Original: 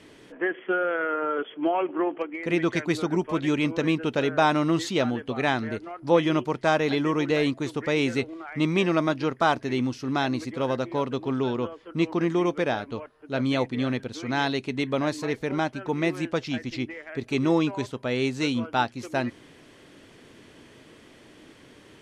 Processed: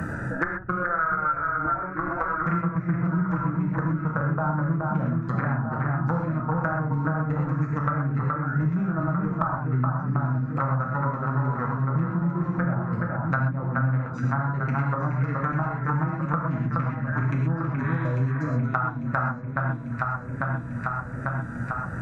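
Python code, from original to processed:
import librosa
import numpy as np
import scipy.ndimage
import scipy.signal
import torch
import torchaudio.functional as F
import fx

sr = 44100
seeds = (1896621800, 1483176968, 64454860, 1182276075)

p1 = fx.wiener(x, sr, points=41)
p2 = fx.dereverb_blind(p1, sr, rt60_s=0.81)
p3 = fx.spec_repair(p2, sr, seeds[0], start_s=17.84, length_s=0.72, low_hz=640.0, high_hz=4000.0, source='both')
p4 = fx.env_lowpass_down(p3, sr, base_hz=360.0, full_db=-23.0)
p5 = fx.curve_eq(p4, sr, hz=(170.0, 390.0, 1400.0, 3100.0, 7100.0), db=(0, -22, 13, -18, 7))
p6 = p5 + fx.echo_alternate(p5, sr, ms=423, hz=2300.0, feedback_pct=68, wet_db=-4.5, dry=0)
p7 = fx.rev_gated(p6, sr, seeds[1], gate_ms=150, shape='flat', drr_db=-1.5)
p8 = fx.band_squash(p7, sr, depth_pct=100)
y = F.gain(torch.from_numpy(p8), 5.5).numpy()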